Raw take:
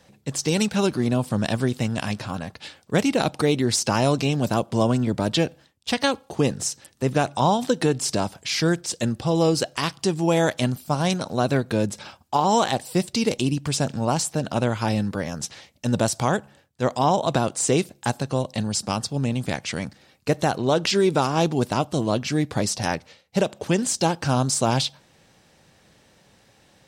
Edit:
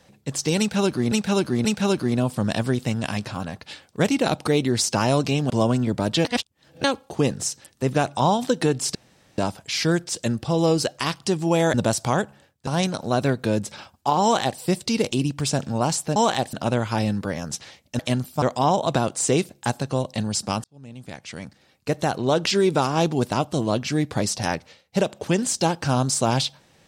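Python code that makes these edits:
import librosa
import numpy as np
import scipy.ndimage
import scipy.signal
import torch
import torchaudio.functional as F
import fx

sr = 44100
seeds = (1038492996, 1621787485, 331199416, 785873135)

y = fx.edit(x, sr, fx.repeat(start_s=0.59, length_s=0.53, count=3),
    fx.cut(start_s=4.44, length_s=0.26),
    fx.reverse_span(start_s=5.45, length_s=0.59),
    fx.insert_room_tone(at_s=8.15, length_s=0.43),
    fx.swap(start_s=10.51, length_s=0.43, other_s=15.89, other_length_s=0.93),
    fx.duplicate(start_s=12.5, length_s=0.37, to_s=14.43),
    fx.fade_in_span(start_s=19.04, length_s=1.66), tone=tone)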